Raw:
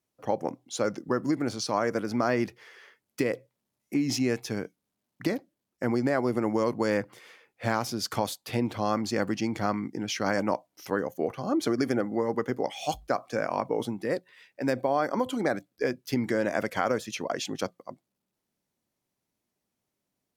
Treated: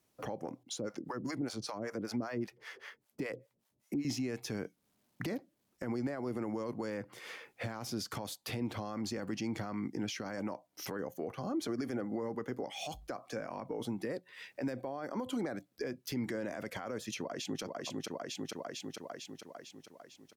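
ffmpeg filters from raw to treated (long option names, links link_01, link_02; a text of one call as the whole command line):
ffmpeg -i in.wav -filter_complex "[0:a]asettb=1/sr,asplit=3[link_01][link_02][link_03];[link_01]atrim=end=0.634[link_04];[link_02]atrim=start=0.63:end=4.05,asetpts=PTS-STARTPTS,afade=type=in:duration=0.004:curve=qsin,afade=type=out:start_time=3.416:duration=0.004:curve=qsin,acrossover=split=560[link_05][link_06];[link_05]aeval=exprs='val(0)*(1-1/2+1/2*cos(2*PI*5.1*n/s))':channel_layout=same[link_07];[link_06]aeval=exprs='val(0)*(1-1/2-1/2*cos(2*PI*5.1*n/s))':channel_layout=same[link_08];[link_07][link_08]amix=inputs=2:normalize=0[link_09];[link_03]atrim=start=4.046[link_10];[link_04][link_09]acrossfade=duration=0.004:curve1=hsin:curve2=qsin[link_11];[link_11][link_10]acrossfade=duration=0.004:curve1=qsin:curve2=hsin,asplit=2[link_12][link_13];[link_13]afade=type=in:start_time=17.17:duration=0.01,afade=type=out:start_time=17.62:duration=0.01,aecho=0:1:450|900|1350|1800|2250|2700|3150:0.530884|0.291986|0.160593|0.0883259|0.0485792|0.0267186|0.0146952[link_14];[link_12][link_14]amix=inputs=2:normalize=0,acompressor=threshold=-43dB:ratio=3,alimiter=level_in=10.5dB:limit=-24dB:level=0:latency=1:release=13,volume=-10.5dB,acrossover=split=390[link_15][link_16];[link_16]acompressor=threshold=-46dB:ratio=6[link_17];[link_15][link_17]amix=inputs=2:normalize=0,volume=7.5dB" out.wav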